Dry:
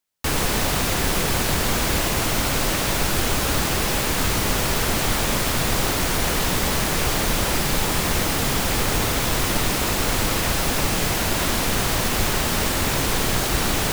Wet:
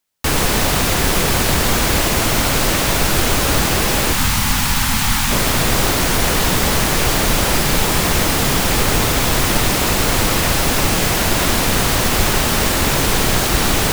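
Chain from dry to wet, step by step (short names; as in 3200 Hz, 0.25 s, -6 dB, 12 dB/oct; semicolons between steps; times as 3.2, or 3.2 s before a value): 4.13–5.31 elliptic band-stop 260–810 Hz; diffused feedback echo 0.715 s, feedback 71%, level -16 dB; gain +5.5 dB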